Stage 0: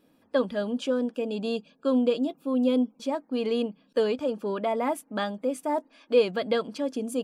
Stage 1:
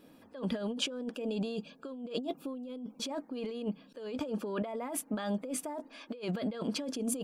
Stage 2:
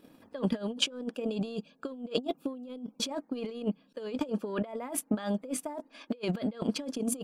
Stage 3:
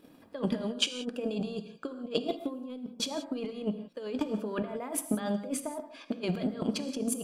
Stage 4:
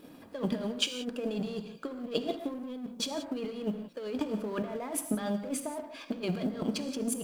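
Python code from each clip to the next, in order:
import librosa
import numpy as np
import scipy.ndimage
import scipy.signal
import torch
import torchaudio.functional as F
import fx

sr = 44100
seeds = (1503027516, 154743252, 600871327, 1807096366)

y1 = fx.over_compress(x, sr, threshold_db=-35.0, ratio=-1.0)
y1 = F.gain(torch.from_numpy(y1), -2.0).numpy()
y2 = fx.transient(y1, sr, attack_db=8, sustain_db=-7)
y3 = fx.rev_gated(y2, sr, seeds[0], gate_ms=200, shape='flat', drr_db=8.5)
y4 = fx.law_mismatch(y3, sr, coded='mu')
y4 = F.gain(torch.from_numpy(y4), -2.0).numpy()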